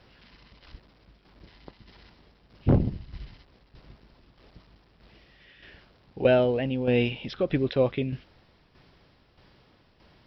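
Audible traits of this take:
tremolo saw down 1.6 Hz, depth 60%

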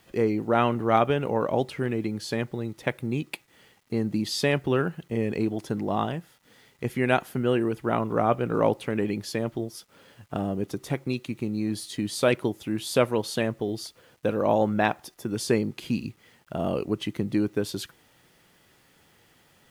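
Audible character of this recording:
a quantiser's noise floor 10 bits, dither none
AAC

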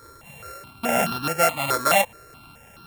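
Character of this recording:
a buzz of ramps at a fixed pitch in blocks of 32 samples
notches that jump at a steady rate 4.7 Hz 760–2,100 Hz

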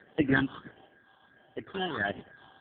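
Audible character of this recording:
aliases and images of a low sample rate 2,400 Hz, jitter 0%
sample-and-hold tremolo 3.5 Hz, depth 55%
phaser sweep stages 6, 1.5 Hz, lowest notch 550–1,200 Hz
AMR narrowband

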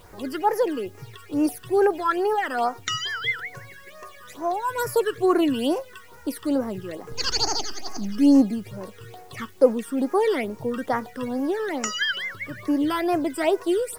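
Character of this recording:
phaser sweep stages 12, 2.3 Hz, lowest notch 690–3,600 Hz
a quantiser's noise floor 10 bits, dither triangular

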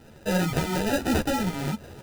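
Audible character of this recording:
phaser sweep stages 2, 1.2 Hz, lowest notch 540–2,500 Hz
aliases and images of a low sample rate 1,100 Hz, jitter 0%
a shimmering, thickened sound

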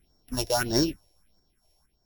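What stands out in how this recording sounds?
a buzz of ramps at a fixed pitch in blocks of 8 samples
phaser sweep stages 4, 1.6 Hz, lowest notch 220–2,700 Hz
sample-and-hold tremolo 4.3 Hz

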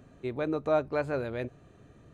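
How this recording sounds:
background noise floor −58 dBFS
spectral slope −3.5 dB per octave

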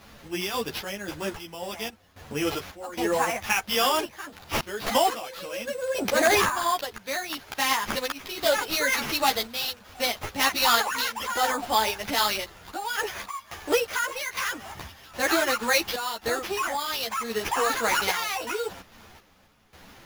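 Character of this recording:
aliases and images of a low sample rate 8,300 Hz, jitter 0%
sample-and-hold tremolo 3.7 Hz, depth 85%
a shimmering, thickened sound

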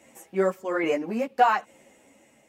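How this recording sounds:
tremolo saw down 1.2 Hz, depth 45%
a shimmering, thickened sound

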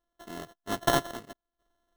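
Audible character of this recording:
a buzz of ramps at a fixed pitch in blocks of 64 samples
sample-and-hold tremolo 4.4 Hz, depth 80%
aliases and images of a low sample rate 2,400 Hz, jitter 0%

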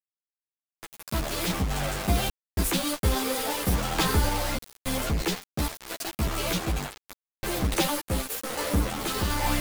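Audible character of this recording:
sample-and-hold tremolo, depth 80%
a quantiser's noise floor 6 bits, dither none
a shimmering, thickened sound

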